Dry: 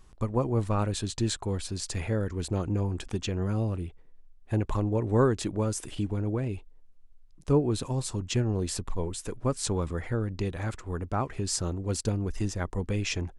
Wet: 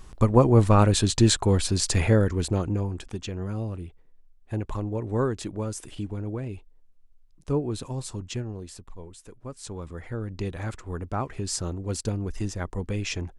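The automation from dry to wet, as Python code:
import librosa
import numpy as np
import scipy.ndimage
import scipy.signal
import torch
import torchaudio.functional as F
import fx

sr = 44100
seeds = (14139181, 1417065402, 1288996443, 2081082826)

y = fx.gain(x, sr, db=fx.line((2.11, 9.5), (3.08, -2.5), (8.23, -2.5), (8.73, -11.0), (9.48, -11.0), (10.46, 0.0)))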